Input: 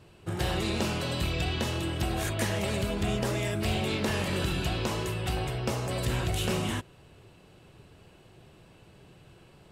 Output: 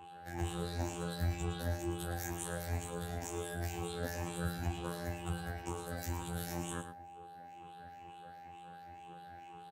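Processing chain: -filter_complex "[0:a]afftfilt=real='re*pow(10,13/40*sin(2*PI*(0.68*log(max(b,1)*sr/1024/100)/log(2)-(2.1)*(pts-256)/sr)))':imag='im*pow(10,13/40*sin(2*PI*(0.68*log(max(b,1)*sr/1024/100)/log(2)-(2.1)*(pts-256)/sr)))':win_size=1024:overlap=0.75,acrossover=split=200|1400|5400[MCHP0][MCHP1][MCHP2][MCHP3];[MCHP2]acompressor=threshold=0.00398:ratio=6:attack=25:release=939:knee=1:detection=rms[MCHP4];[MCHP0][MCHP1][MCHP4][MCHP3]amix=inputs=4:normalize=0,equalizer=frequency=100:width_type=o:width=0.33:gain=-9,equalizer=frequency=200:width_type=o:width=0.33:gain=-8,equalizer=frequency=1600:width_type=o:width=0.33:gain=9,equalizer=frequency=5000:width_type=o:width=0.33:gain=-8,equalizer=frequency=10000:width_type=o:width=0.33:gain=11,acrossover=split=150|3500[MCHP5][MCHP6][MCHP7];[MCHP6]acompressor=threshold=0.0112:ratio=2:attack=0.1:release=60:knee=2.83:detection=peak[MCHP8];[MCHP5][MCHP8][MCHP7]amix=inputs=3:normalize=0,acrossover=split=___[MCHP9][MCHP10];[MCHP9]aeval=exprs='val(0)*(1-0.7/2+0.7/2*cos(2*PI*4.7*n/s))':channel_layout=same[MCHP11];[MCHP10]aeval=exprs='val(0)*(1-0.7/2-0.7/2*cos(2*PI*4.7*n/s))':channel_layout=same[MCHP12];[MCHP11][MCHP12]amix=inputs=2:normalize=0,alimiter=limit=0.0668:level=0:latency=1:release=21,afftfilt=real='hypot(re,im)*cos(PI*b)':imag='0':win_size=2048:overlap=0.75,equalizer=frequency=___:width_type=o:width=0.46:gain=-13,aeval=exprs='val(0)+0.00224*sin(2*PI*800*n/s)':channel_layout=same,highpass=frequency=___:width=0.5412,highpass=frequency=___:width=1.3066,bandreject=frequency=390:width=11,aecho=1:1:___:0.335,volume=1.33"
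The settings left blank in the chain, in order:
2200, 10000, 57, 57, 111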